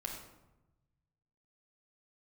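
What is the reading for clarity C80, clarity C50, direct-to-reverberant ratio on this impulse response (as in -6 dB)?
6.5 dB, 4.0 dB, -1.0 dB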